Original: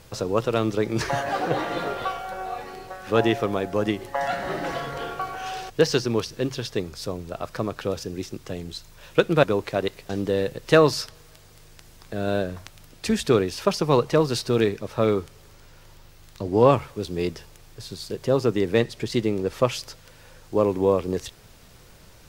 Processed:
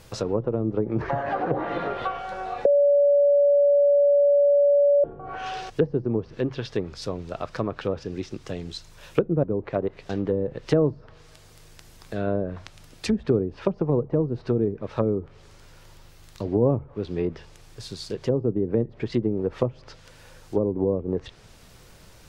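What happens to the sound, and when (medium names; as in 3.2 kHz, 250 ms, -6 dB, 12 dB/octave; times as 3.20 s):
2.65–5.04 s: bleep 572 Hz -7.5 dBFS
19.29–19.82 s: treble shelf 5.3 kHz +9.5 dB
whole clip: low-pass that closes with the level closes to 400 Hz, closed at -18 dBFS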